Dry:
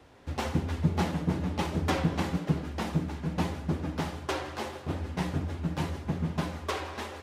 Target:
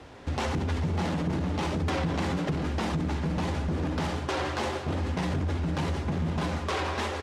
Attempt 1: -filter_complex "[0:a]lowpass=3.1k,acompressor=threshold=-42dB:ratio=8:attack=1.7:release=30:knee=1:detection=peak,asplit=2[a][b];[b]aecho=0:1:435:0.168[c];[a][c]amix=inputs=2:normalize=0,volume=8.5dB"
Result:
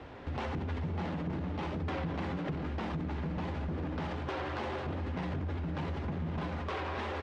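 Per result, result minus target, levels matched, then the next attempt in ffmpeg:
8000 Hz band -12.5 dB; compressor: peak gain reduction +7 dB
-filter_complex "[0:a]lowpass=8.8k,acompressor=threshold=-42dB:ratio=8:attack=1.7:release=30:knee=1:detection=peak,asplit=2[a][b];[b]aecho=0:1:435:0.168[c];[a][c]amix=inputs=2:normalize=0,volume=8.5dB"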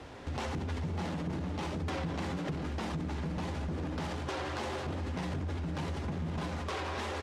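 compressor: peak gain reduction +7 dB
-filter_complex "[0:a]lowpass=8.8k,acompressor=threshold=-34dB:ratio=8:attack=1.7:release=30:knee=1:detection=peak,asplit=2[a][b];[b]aecho=0:1:435:0.168[c];[a][c]amix=inputs=2:normalize=0,volume=8.5dB"

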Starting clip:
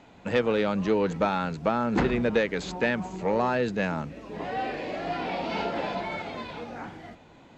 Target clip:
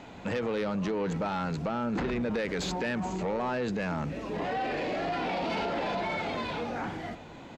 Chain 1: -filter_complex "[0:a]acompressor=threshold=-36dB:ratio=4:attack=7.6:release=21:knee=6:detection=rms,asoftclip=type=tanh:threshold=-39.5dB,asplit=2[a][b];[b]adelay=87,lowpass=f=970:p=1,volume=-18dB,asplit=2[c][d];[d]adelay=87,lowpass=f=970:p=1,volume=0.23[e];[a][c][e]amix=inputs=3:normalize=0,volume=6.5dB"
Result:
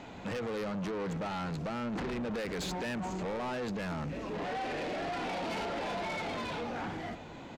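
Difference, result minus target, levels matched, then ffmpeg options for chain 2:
soft clip: distortion +9 dB
-filter_complex "[0:a]acompressor=threshold=-36dB:ratio=4:attack=7.6:release=21:knee=6:detection=rms,asoftclip=type=tanh:threshold=-30dB,asplit=2[a][b];[b]adelay=87,lowpass=f=970:p=1,volume=-18dB,asplit=2[c][d];[d]adelay=87,lowpass=f=970:p=1,volume=0.23[e];[a][c][e]amix=inputs=3:normalize=0,volume=6.5dB"

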